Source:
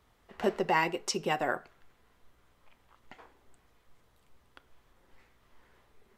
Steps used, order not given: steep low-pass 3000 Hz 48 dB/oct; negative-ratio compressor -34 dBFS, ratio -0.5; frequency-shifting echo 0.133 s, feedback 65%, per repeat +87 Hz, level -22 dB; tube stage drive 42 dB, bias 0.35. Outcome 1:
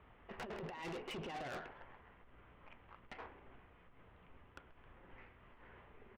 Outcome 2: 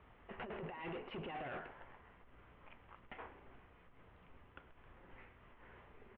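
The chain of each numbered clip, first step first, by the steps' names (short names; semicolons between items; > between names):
steep low-pass > negative-ratio compressor > frequency-shifting echo > tube stage; negative-ratio compressor > frequency-shifting echo > tube stage > steep low-pass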